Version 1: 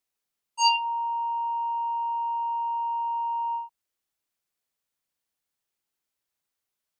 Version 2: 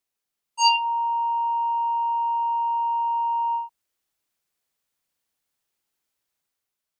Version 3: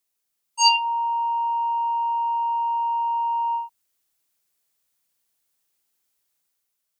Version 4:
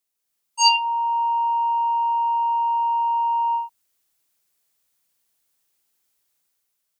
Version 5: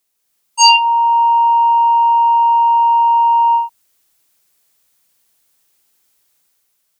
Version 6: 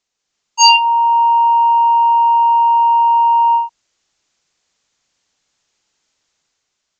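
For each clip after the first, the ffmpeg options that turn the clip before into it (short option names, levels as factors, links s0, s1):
-af "dynaudnorm=f=140:g=9:m=1.68"
-af "highshelf=f=5300:g=8.5"
-af "dynaudnorm=f=170:g=3:m=1.78,volume=0.75"
-af "apsyclip=3.76,volume=0.841"
-af "aresample=16000,aresample=44100"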